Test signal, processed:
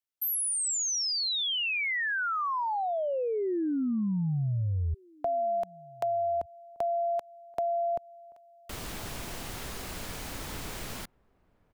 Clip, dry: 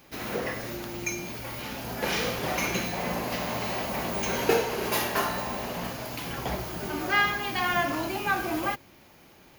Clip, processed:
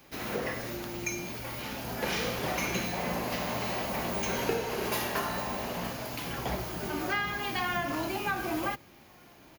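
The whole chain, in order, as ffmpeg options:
ffmpeg -i in.wav -filter_complex "[0:a]acrossover=split=230[link_01][link_02];[link_02]acompressor=threshold=-26dB:ratio=6[link_03];[link_01][link_03]amix=inputs=2:normalize=0,asplit=2[link_04][link_05];[link_05]adelay=1516,volume=-27dB,highshelf=frequency=4000:gain=-34.1[link_06];[link_04][link_06]amix=inputs=2:normalize=0,volume=-1.5dB" out.wav

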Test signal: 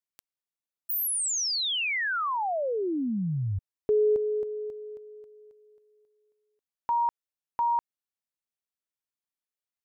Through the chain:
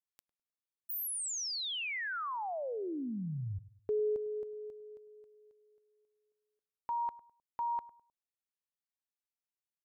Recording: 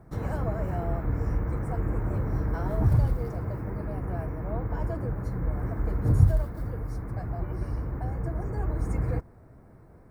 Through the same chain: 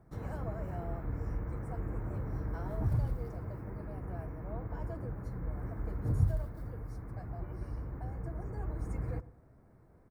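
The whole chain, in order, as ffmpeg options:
ffmpeg -i in.wav -filter_complex "[0:a]asplit=2[link_01][link_02];[link_02]adelay=103,lowpass=frequency=1100:poles=1,volume=-16.5dB,asplit=2[link_03][link_04];[link_04]adelay=103,lowpass=frequency=1100:poles=1,volume=0.38,asplit=2[link_05][link_06];[link_06]adelay=103,lowpass=frequency=1100:poles=1,volume=0.38[link_07];[link_01][link_03][link_05][link_07]amix=inputs=4:normalize=0,volume=-9dB" out.wav

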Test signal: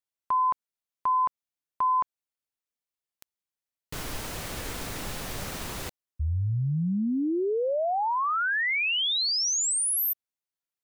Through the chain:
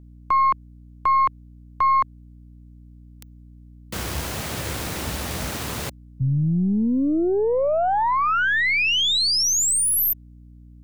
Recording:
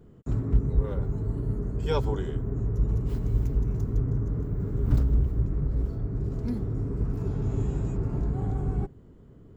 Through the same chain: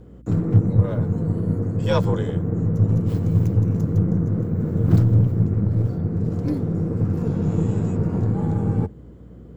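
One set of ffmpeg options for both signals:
ffmpeg -i in.wav -af "afreqshift=55,aeval=exprs='0.316*(cos(1*acos(clip(val(0)/0.316,-1,1)))-cos(1*PI/2))+0.0112*(cos(8*acos(clip(val(0)/0.316,-1,1)))-cos(8*PI/2))':channel_layout=same,aeval=exprs='val(0)+0.00316*(sin(2*PI*60*n/s)+sin(2*PI*2*60*n/s)/2+sin(2*PI*3*60*n/s)/3+sin(2*PI*4*60*n/s)/4+sin(2*PI*5*60*n/s)/5)':channel_layout=same,volume=6dB" out.wav

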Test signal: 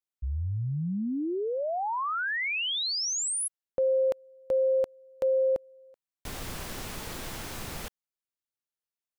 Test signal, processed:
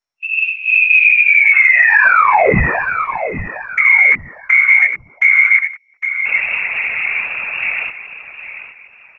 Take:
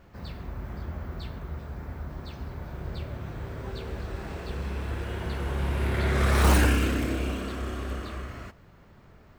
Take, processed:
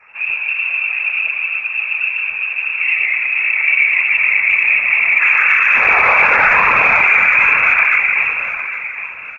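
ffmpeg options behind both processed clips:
ffmpeg -i in.wav -filter_complex "[0:a]afwtdn=0.0178,aemphasis=mode=production:type=bsi,aecho=1:1:4.9:0.49,flanger=delay=20:depth=4.1:speed=1.2,lowpass=frequency=2300:width_type=q:width=0.5098,lowpass=frequency=2300:width_type=q:width=0.6013,lowpass=frequency=2300:width_type=q:width=0.9,lowpass=frequency=2300:width_type=q:width=2.563,afreqshift=-2700,acompressor=threshold=-37dB:ratio=2.5:attack=0.87:release=21:knee=1,asplit=2[link_01][link_02];[link_02]aecho=0:1:808|1616|2424:0.266|0.0851|0.0272[link_03];[link_01][link_03]amix=inputs=2:normalize=0,afftfilt=real='hypot(re,im)*cos(2*PI*random(0))':imag='hypot(re,im)*sin(2*PI*random(1))':win_size=512:overlap=0.75,acontrast=55,equalizer=frequency=310:width=1.2:gain=-7.5,alimiter=level_in=31.5dB:limit=-1dB:release=50:level=0:latency=1,volume=-1dB" -ar 22050 -c:a mp2 -b:a 96k out.mp2

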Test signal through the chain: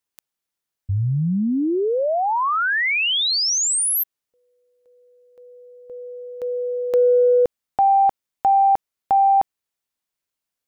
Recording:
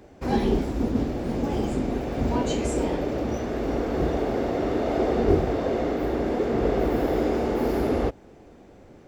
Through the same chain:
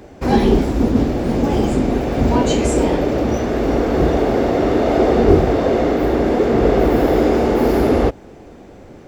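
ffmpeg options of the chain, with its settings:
ffmpeg -i in.wav -af "acontrast=65,volume=3dB" out.wav

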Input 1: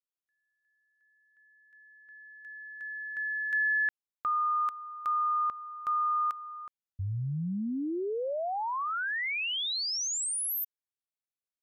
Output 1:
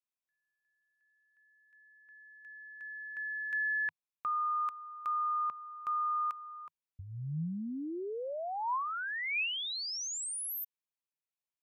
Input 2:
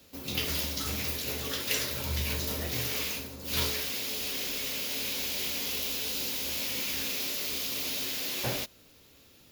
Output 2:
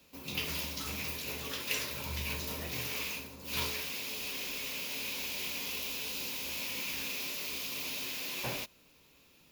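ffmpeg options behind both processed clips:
ffmpeg -i in.wav -af "equalizer=frequency=100:width_type=o:width=0.33:gain=-9,equalizer=frequency=160:width_type=o:width=0.33:gain=5,equalizer=frequency=1000:width_type=o:width=0.33:gain=7,equalizer=frequency=2500:width_type=o:width=0.33:gain=7,volume=-6dB" out.wav

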